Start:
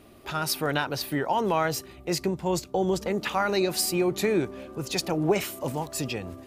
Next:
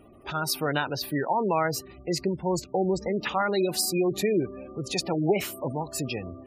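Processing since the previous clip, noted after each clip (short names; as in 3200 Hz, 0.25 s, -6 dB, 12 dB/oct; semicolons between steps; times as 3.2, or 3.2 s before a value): spectral gate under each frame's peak -20 dB strong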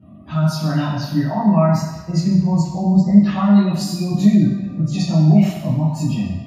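reverb RT60 1.2 s, pre-delay 3 ms, DRR -14 dB; gain -15.5 dB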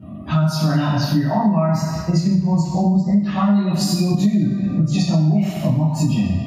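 compressor 6:1, threshold -23 dBFS, peak gain reduction 17 dB; gain +8.5 dB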